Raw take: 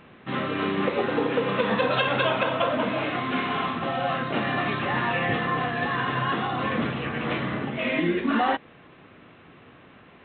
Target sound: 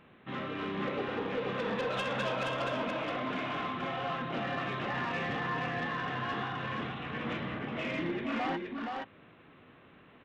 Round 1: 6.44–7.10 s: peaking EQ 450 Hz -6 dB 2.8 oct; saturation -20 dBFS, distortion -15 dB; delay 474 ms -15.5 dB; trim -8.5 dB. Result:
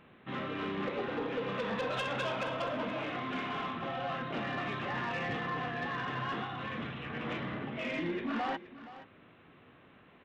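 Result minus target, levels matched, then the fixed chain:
echo-to-direct -12 dB
6.44–7.10 s: peaking EQ 450 Hz -6 dB 2.8 oct; saturation -20 dBFS, distortion -15 dB; delay 474 ms -3.5 dB; trim -8.5 dB

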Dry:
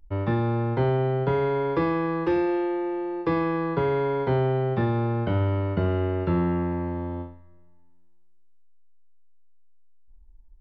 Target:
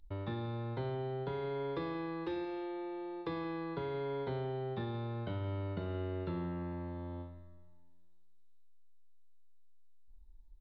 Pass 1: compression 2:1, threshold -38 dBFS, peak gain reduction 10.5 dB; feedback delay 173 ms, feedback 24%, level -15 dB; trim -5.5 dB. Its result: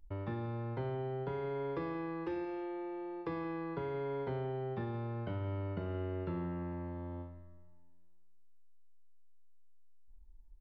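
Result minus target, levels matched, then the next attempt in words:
4 kHz band -7.0 dB
compression 2:1, threshold -38 dBFS, peak gain reduction 10.5 dB; peaking EQ 3.8 kHz +14 dB 0.37 oct; feedback delay 173 ms, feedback 24%, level -15 dB; trim -5.5 dB

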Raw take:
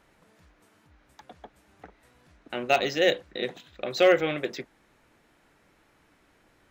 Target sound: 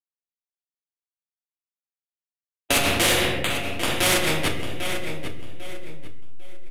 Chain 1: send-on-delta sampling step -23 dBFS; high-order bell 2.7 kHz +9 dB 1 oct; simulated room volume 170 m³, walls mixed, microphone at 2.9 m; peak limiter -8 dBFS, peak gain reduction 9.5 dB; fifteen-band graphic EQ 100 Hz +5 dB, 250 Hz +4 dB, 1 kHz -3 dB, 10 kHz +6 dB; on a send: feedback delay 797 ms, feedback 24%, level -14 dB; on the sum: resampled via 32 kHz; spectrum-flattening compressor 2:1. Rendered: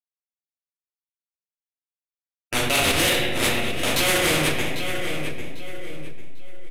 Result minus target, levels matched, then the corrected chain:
send-on-delta sampling: distortion -9 dB
send-on-delta sampling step -16.5 dBFS; high-order bell 2.7 kHz +9 dB 1 oct; simulated room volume 170 m³, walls mixed, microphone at 2.9 m; peak limiter -8 dBFS, peak gain reduction 13.5 dB; fifteen-band graphic EQ 100 Hz +5 dB, 250 Hz +4 dB, 1 kHz -3 dB, 10 kHz +6 dB; on a send: feedback delay 797 ms, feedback 24%, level -14 dB; on the sum: resampled via 32 kHz; spectrum-flattening compressor 2:1

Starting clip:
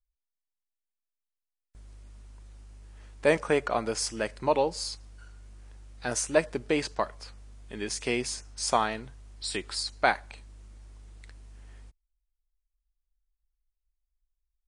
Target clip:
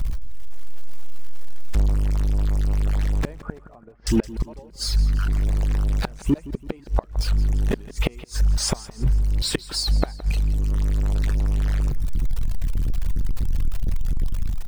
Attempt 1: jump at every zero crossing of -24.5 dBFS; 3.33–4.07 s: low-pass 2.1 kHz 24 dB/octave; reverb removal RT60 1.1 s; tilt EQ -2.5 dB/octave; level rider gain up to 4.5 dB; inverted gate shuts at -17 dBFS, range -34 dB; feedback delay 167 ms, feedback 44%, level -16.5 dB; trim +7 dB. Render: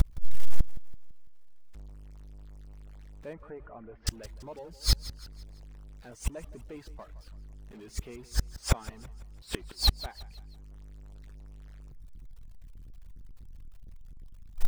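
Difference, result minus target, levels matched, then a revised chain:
jump at every zero crossing: distortion +6 dB
jump at every zero crossing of -32.5 dBFS; 3.33–4.07 s: low-pass 2.1 kHz 24 dB/octave; reverb removal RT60 1.1 s; tilt EQ -2.5 dB/octave; level rider gain up to 4.5 dB; inverted gate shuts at -17 dBFS, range -34 dB; feedback delay 167 ms, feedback 44%, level -16.5 dB; trim +7 dB

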